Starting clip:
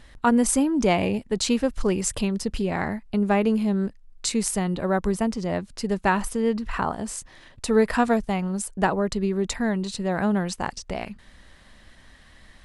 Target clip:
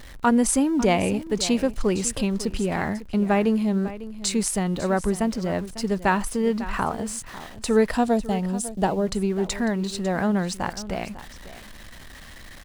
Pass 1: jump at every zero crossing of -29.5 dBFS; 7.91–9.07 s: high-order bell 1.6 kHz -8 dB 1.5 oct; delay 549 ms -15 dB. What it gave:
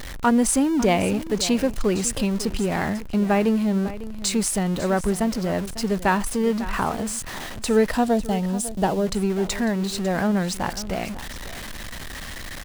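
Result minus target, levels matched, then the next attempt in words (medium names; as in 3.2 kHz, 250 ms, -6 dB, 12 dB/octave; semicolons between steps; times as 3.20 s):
jump at every zero crossing: distortion +10 dB
jump at every zero crossing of -40.5 dBFS; 7.91–9.07 s: high-order bell 1.6 kHz -8 dB 1.5 oct; delay 549 ms -15 dB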